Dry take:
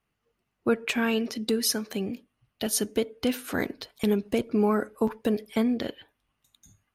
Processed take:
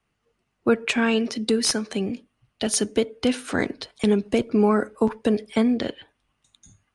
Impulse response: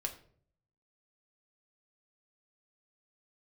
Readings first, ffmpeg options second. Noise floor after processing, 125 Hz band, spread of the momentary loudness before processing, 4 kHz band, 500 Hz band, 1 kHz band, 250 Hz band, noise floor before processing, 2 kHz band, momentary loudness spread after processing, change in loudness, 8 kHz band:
−75 dBFS, +4.5 dB, 8 LU, +4.5 dB, +4.5 dB, +4.5 dB, +4.5 dB, −79 dBFS, +4.5 dB, 8 LU, +4.5 dB, +3.5 dB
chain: -filter_complex "[0:a]acrossover=split=170|1700[link_01][link_02][link_03];[link_03]aeval=exprs='(mod(5.31*val(0)+1,2)-1)/5.31':channel_layout=same[link_04];[link_01][link_02][link_04]amix=inputs=3:normalize=0,aresample=22050,aresample=44100,volume=4.5dB"

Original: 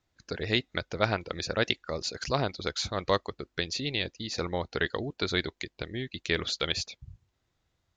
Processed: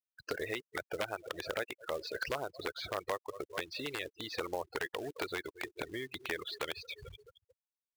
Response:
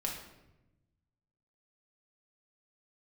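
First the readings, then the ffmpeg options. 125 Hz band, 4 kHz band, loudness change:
−17.0 dB, −11.0 dB, −8.5 dB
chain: -filter_complex "[0:a]acrossover=split=3800[link_01][link_02];[link_02]acompressor=threshold=-41dB:ratio=4:attack=1:release=60[link_03];[link_01][link_03]amix=inputs=2:normalize=0,aecho=1:1:218|436|654|872|1090:0.0794|0.0477|0.0286|0.0172|0.0103,asplit=2[link_04][link_05];[1:a]atrim=start_sample=2205,atrim=end_sample=4410[link_06];[link_05][link_06]afir=irnorm=-1:irlink=0,volume=-19.5dB[link_07];[link_04][link_07]amix=inputs=2:normalize=0,acompressor=threshold=-40dB:ratio=16,equalizer=frequency=210:width_type=o:width=0.55:gain=-8,afftfilt=real='re*gte(hypot(re,im),0.00562)':imag='im*gte(hypot(re,im),0.00562)':win_size=1024:overlap=0.75,aeval=exprs='(mod(42.2*val(0)+1,2)-1)/42.2':channel_layout=same,bass=frequency=250:gain=-15,treble=frequency=4000:gain=-13,acrusher=bits=4:mode=log:mix=0:aa=0.000001,volume=10.5dB"

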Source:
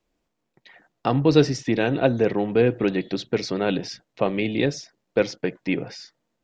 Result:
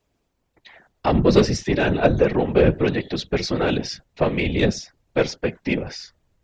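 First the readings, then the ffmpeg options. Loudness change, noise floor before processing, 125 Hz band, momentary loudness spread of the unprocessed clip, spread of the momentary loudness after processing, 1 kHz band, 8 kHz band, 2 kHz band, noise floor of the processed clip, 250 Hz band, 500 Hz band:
+2.0 dB, −78 dBFS, +3.0 dB, 10 LU, 9 LU, +3.0 dB, can't be measured, +3.0 dB, −72 dBFS, +1.5 dB, +2.0 dB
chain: -af "acontrast=81,asubboost=boost=4:cutoff=110,afftfilt=real='hypot(re,im)*cos(2*PI*random(0))':imag='hypot(re,im)*sin(2*PI*random(1))':win_size=512:overlap=0.75,volume=3dB"

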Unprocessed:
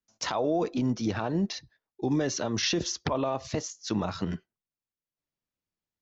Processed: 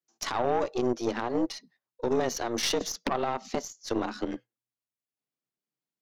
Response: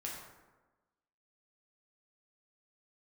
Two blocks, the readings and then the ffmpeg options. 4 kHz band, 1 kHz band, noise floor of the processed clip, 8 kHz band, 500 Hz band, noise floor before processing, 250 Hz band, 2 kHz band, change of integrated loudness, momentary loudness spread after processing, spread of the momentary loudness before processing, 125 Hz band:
−1.5 dB, +3.0 dB, below −85 dBFS, can't be measured, +2.0 dB, below −85 dBFS, −3.0 dB, 0.0 dB, −0.5 dB, 8 LU, 7 LU, −9.5 dB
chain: -af "afreqshift=120,aeval=exprs='0.2*(cos(1*acos(clip(val(0)/0.2,-1,1)))-cos(1*PI/2))+0.0251*(cos(4*acos(clip(val(0)/0.2,-1,1)))-cos(4*PI/2))+0.01*(cos(7*acos(clip(val(0)/0.2,-1,1)))-cos(7*PI/2))':channel_layout=same"

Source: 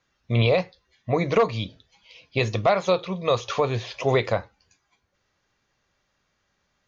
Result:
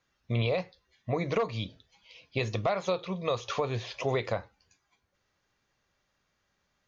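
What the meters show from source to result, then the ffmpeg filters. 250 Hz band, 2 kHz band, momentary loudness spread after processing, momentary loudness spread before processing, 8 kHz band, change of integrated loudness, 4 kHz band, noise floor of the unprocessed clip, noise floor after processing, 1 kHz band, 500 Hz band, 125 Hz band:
−7.0 dB, −7.5 dB, 8 LU, 9 LU, can't be measured, −8.0 dB, −7.0 dB, −73 dBFS, −77 dBFS, −8.0 dB, −8.0 dB, −7.0 dB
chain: -af "acompressor=threshold=-24dB:ratio=2,volume=-4dB"

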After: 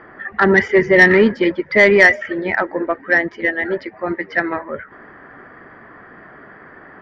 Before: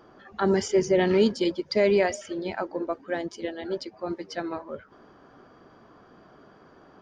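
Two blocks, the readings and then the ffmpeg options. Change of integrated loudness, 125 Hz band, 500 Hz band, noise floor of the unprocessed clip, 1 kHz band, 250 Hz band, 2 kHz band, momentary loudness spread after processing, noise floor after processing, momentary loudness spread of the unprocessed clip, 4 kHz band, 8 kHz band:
+11.5 dB, +8.0 dB, +8.0 dB, −55 dBFS, +10.0 dB, +8.0 dB, +22.0 dB, 15 LU, −43 dBFS, 13 LU, +5.0 dB, can't be measured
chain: -af "lowpass=frequency=1900:width_type=q:width=9.6,acontrast=82,volume=1.5dB"

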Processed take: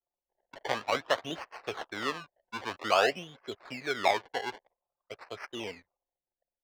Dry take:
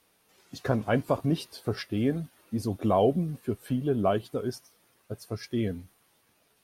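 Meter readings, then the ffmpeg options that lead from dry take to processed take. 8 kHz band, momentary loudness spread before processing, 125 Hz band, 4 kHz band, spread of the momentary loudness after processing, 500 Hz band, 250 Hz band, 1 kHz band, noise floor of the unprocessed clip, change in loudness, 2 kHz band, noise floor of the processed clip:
+2.0 dB, 13 LU, −20.5 dB, +6.5 dB, 16 LU, −4.5 dB, −15.0 dB, +2.0 dB, −68 dBFS, −3.5 dB, +7.5 dB, below −85 dBFS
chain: -filter_complex "[0:a]acrusher=samples=24:mix=1:aa=0.000001:lfo=1:lforange=24:lforate=0.51,acrossover=split=480 5300:gain=0.0708 1 0.0891[link_01][link_02][link_03];[link_01][link_02][link_03]amix=inputs=3:normalize=0,anlmdn=0.000158,volume=1.5dB"

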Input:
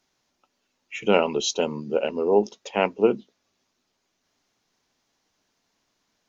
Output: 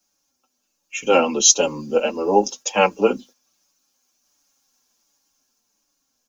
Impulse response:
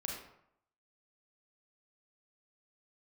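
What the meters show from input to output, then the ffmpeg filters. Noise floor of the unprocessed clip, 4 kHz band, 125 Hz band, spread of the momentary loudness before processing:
−75 dBFS, +7.0 dB, +0.5 dB, 8 LU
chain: -filter_complex "[0:a]bandreject=frequency=2000:width=5.3,agate=range=-7dB:threshold=-44dB:ratio=16:detection=peak,aecho=1:1:3.7:0.44,acrossover=split=250|730[link_01][link_02][link_03];[link_03]dynaudnorm=framelen=200:gausssize=13:maxgain=5dB[link_04];[link_01][link_02][link_04]amix=inputs=3:normalize=0,aexciter=amount=5.1:drive=2:freq=5300,asplit=2[link_05][link_06];[link_06]adelay=6.4,afreqshift=-1.4[link_07];[link_05][link_07]amix=inputs=2:normalize=1,volume=5.5dB"

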